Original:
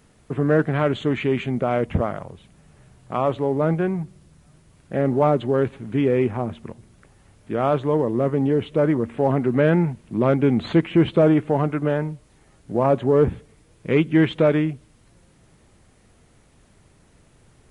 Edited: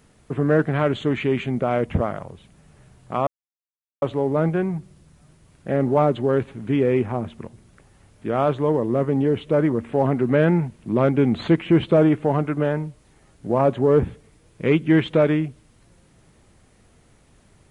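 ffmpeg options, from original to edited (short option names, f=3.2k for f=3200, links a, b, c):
-filter_complex "[0:a]asplit=2[a][b];[a]atrim=end=3.27,asetpts=PTS-STARTPTS,afade=t=out:st=3.266:d=0.004:c=hsin,apad=pad_dur=0.75[c];[b]atrim=start=3.27,asetpts=PTS-STARTPTS,afade=t=in:d=0.004:c=hsin[d];[c][d]concat=n=2:v=0:a=1"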